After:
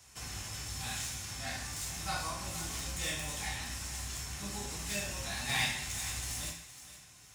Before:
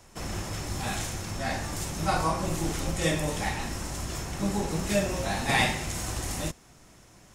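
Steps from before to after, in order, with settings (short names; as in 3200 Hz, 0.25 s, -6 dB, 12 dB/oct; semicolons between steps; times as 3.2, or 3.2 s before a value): tracing distortion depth 0.03 ms; HPF 46 Hz; passive tone stack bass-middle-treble 5-5-5; in parallel at -2 dB: compressor, threshold -53 dBFS, peak gain reduction 20.5 dB; on the sum: thinning echo 0.467 s, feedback 28%, level -13 dB; on a send at -1 dB: reverb, pre-delay 3 ms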